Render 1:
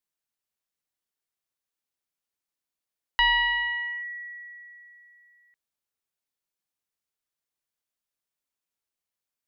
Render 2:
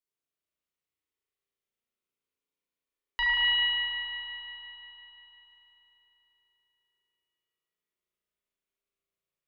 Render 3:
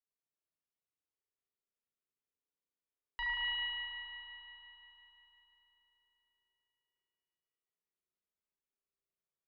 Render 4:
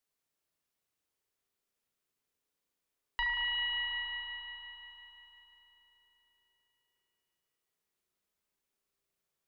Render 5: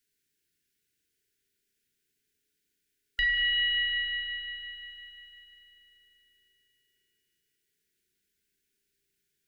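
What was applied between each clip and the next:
thirty-one-band graphic EQ 400 Hz +8 dB, 800 Hz −9 dB, 1,600 Hz −5 dB; spring reverb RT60 3.9 s, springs 35 ms, chirp 70 ms, DRR −7.5 dB; level −7 dB
high-shelf EQ 2,300 Hz −9 dB; level −6.5 dB
downward compressor, threshold −39 dBFS, peak gain reduction 6.5 dB; level +8.5 dB
linear-phase brick-wall band-stop 470–1,400 Hz; level +7 dB

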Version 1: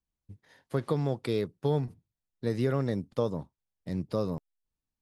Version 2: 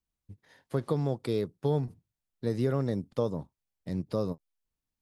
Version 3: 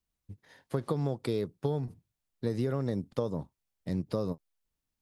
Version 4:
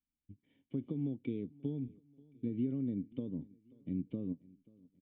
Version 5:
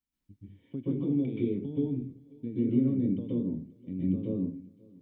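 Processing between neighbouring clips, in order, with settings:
dynamic equaliser 2,200 Hz, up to −5 dB, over −50 dBFS, Q 0.87; every ending faded ahead of time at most 580 dB per second
downward compressor, threshold −28 dBFS, peak gain reduction 6.5 dB; level +2 dB
formant resonators in series i; repeating echo 535 ms, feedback 49%, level −24 dB; level +2.5 dB
convolution reverb RT60 0.35 s, pre-delay 119 ms, DRR −7 dB

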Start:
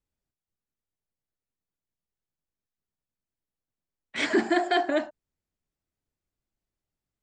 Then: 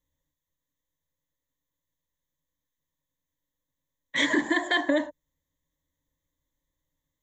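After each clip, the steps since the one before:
EQ curve with evenly spaced ripples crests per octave 1.1, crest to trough 16 dB
downward compressor, threshold −22 dBFS, peak gain reduction 6.5 dB
level +2 dB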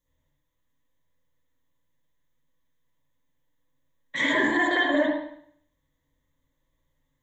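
brickwall limiter −21.5 dBFS, peak gain reduction 10 dB
convolution reverb RT60 0.65 s, pre-delay 49 ms, DRR −7.5 dB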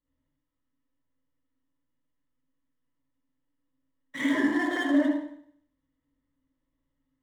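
running median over 9 samples
hollow resonant body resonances 270/1,300/2,900 Hz, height 14 dB, ringing for 75 ms
level −7 dB

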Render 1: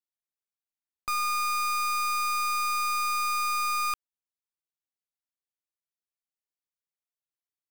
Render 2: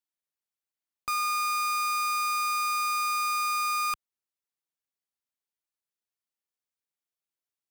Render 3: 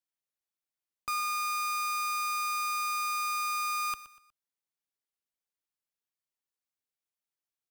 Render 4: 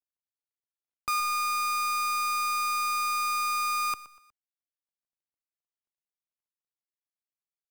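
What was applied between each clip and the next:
high-pass filter 56 Hz 6 dB per octave
repeating echo 121 ms, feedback 35%, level −15.5 dB; level −3 dB
running median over 25 samples; level +4.5 dB

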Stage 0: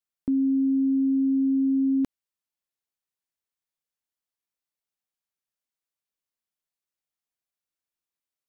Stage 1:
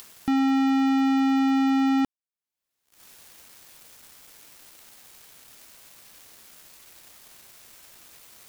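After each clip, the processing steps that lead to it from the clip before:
upward compression, threshold −35 dBFS
leveller curve on the samples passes 5
level −1 dB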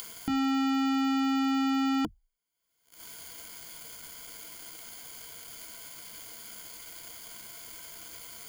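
EQ curve with evenly spaced ripples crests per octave 1.8, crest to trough 12 dB
brickwall limiter −25.5 dBFS, peak gain reduction 7.5 dB
level +3 dB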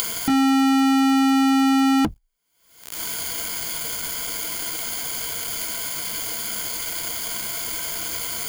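leveller curve on the samples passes 3
upward compression, threshold −31 dBFS
level +7 dB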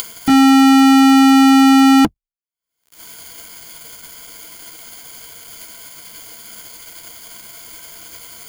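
expander for the loud parts 2.5 to 1, over −40 dBFS
level +8.5 dB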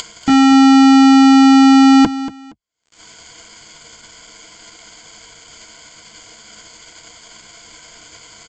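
linear-phase brick-wall low-pass 8,300 Hz
repeating echo 234 ms, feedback 23%, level −14.5 dB

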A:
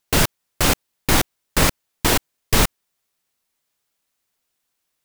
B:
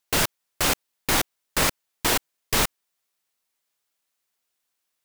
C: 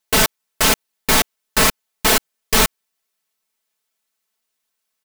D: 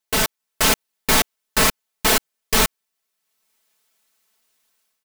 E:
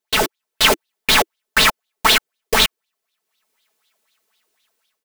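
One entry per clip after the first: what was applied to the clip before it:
low-shelf EQ 290 Hz −8.5 dB; level −3 dB
comb filter 4.6 ms, depth 91%; leveller curve on the samples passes 1; level +1.5 dB
automatic gain control gain up to 13.5 dB; level −5 dB
auto-filter bell 4 Hz 320–3,900 Hz +17 dB; level −3 dB

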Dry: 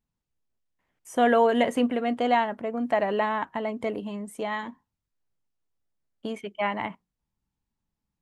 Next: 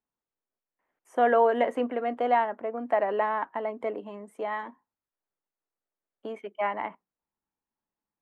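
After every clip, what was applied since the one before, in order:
three-way crossover with the lows and the highs turned down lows −19 dB, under 290 Hz, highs −16 dB, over 2,100 Hz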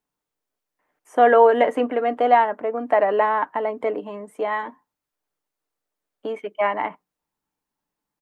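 comb filter 6.7 ms, depth 30%
level +7 dB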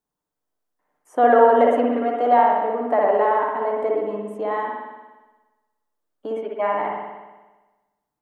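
parametric band 2,400 Hz −7.5 dB 1 octave
spring reverb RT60 1.2 s, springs 58 ms, chirp 75 ms, DRR −1 dB
level −2 dB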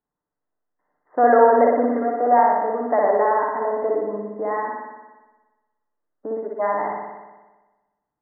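linear-phase brick-wall low-pass 2,100 Hz

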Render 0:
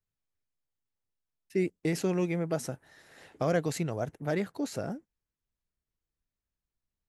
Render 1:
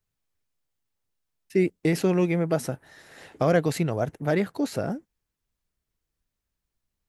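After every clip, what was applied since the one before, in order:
dynamic equaliser 6,800 Hz, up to −6 dB, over −57 dBFS, Q 1.6
level +6.5 dB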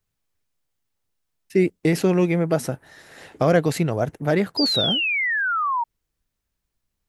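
sound drawn into the spectrogram fall, 0:04.57–0:05.84, 910–5,000 Hz −26 dBFS
level +3.5 dB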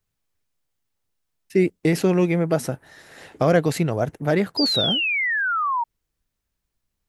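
no processing that can be heard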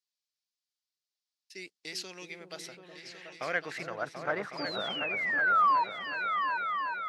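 band-pass filter sweep 4,700 Hz → 1,200 Hz, 0:02.32–0:04.27
echo whose low-pass opens from repeat to repeat 368 ms, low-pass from 400 Hz, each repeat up 2 octaves, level −3 dB

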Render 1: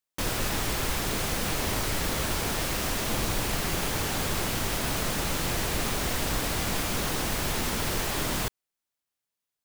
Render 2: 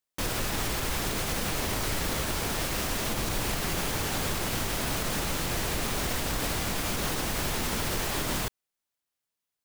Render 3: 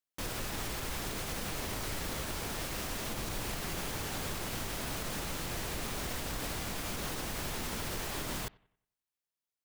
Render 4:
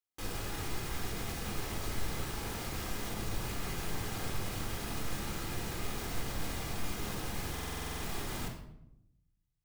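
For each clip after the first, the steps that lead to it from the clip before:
brickwall limiter −19.5 dBFS, peak gain reduction 5.5 dB
bucket-brigade delay 92 ms, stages 2,048, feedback 37%, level −24 dB; level −7.5 dB
rectangular room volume 2,100 cubic metres, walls furnished, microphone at 3.9 metres; buffer that repeats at 0:07.52, samples 2,048, times 10; level −6 dB

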